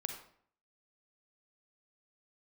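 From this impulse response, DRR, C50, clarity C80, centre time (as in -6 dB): 4.5 dB, 6.0 dB, 9.5 dB, 22 ms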